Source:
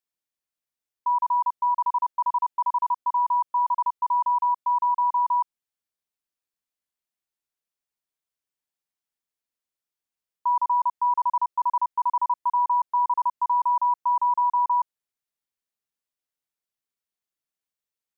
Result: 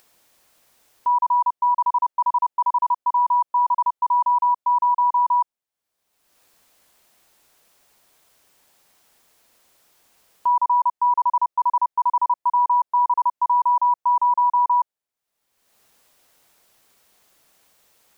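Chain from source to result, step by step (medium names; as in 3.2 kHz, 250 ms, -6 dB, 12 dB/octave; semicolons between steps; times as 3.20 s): upward compressor, threshold -37 dBFS; peaking EQ 680 Hz +5.5 dB 1.6 oct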